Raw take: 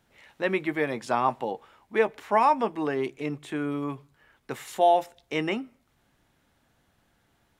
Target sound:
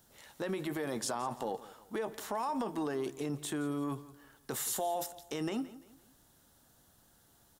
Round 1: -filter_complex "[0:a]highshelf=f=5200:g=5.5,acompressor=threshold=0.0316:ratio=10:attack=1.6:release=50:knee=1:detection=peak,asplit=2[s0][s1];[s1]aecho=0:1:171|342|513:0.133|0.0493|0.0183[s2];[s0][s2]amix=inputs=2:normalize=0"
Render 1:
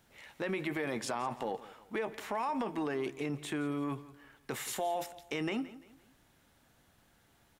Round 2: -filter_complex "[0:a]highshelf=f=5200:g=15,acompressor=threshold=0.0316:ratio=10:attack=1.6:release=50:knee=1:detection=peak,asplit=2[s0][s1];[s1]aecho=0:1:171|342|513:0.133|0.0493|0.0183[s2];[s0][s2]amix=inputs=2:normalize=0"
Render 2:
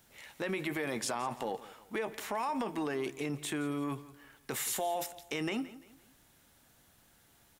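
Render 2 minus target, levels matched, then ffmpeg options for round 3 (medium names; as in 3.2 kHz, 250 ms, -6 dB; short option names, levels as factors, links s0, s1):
2 kHz band +5.5 dB
-filter_complex "[0:a]highshelf=f=5200:g=15,acompressor=threshold=0.0316:ratio=10:attack=1.6:release=50:knee=1:detection=peak,equalizer=f=2300:w=2.1:g=-11,asplit=2[s0][s1];[s1]aecho=0:1:171|342|513:0.133|0.0493|0.0183[s2];[s0][s2]amix=inputs=2:normalize=0"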